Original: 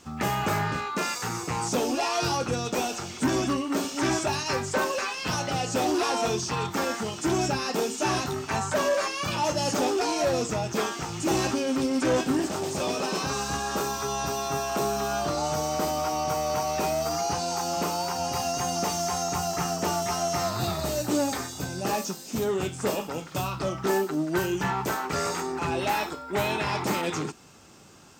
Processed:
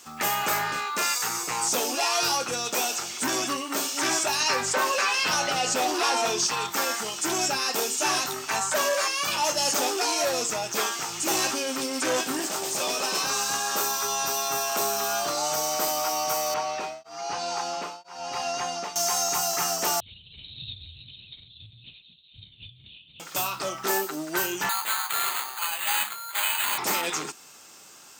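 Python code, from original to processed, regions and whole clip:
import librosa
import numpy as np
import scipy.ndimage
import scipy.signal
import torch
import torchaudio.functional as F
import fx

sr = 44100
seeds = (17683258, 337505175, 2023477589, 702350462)

y = fx.chain(x, sr, fx.high_shelf(hz=6200.0, db=-9.0),
    fx.doubler(ms=12.0, db=-11.0),
    fx.env_flatten(amount_pct=50), at=(4.4, 6.47))
y = fx.chain(y, sr, fx.lowpass(hz=3800.0, slope=12),
    fx.tremolo_abs(hz=1.0), at=(16.54, 18.96))
y = fx.chain(y, sr, fx.cheby2_bandstop(low_hz=300.0, high_hz=1400.0, order=4, stop_db=60),
    fx.low_shelf(hz=180.0, db=11.0),
    fx.lpc_vocoder(seeds[0], excitation='whisper', order=8), at=(20.0, 23.2))
y = fx.chain(y, sr, fx.highpass(hz=930.0, slope=24),
    fx.resample_bad(factor=8, down='none', up='hold'), at=(24.69, 26.78))
y = fx.highpass(y, sr, hz=1000.0, slope=6)
y = fx.high_shelf(y, sr, hz=8700.0, db=10.5)
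y = y * 10.0 ** (4.0 / 20.0)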